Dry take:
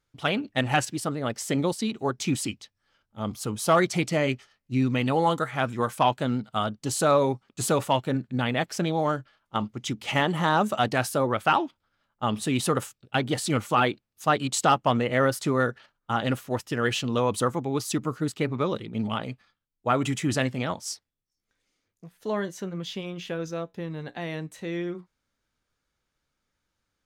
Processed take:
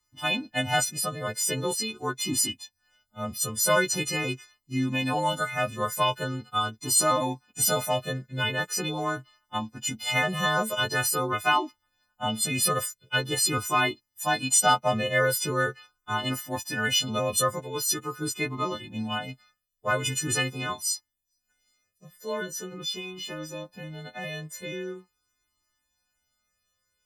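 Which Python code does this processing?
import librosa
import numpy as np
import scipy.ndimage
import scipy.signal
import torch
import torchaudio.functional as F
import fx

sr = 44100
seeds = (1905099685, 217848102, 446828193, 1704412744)

y = fx.freq_snap(x, sr, grid_st=3)
y = fx.low_shelf(y, sr, hz=190.0, db=-8.5, at=(17.59, 18.17))
y = fx.comb_cascade(y, sr, direction='falling', hz=0.43)
y = y * 10.0 ** (1.0 / 20.0)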